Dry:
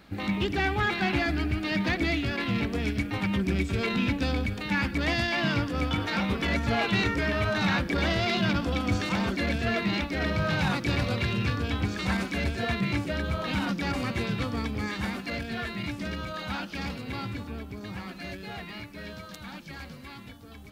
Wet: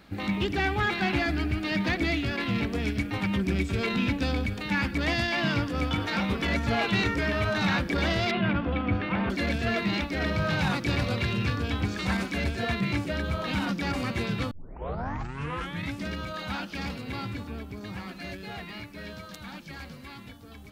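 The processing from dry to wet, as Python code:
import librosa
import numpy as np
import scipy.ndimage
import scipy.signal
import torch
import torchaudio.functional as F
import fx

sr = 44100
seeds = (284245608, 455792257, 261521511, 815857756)

y = fx.lowpass(x, sr, hz=2800.0, slope=24, at=(8.31, 9.3))
y = fx.edit(y, sr, fx.tape_start(start_s=14.51, length_s=1.45), tone=tone)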